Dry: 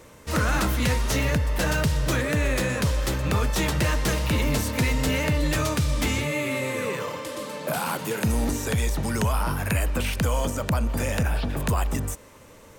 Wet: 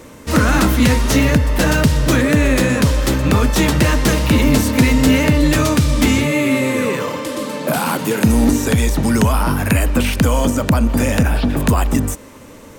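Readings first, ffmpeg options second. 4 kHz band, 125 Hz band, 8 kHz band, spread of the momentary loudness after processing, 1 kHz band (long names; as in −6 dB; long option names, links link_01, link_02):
+8.0 dB, +8.5 dB, +8.0 dB, 5 LU, +8.0 dB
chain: -af "equalizer=frequency=260:width=2:gain=8,volume=8dB"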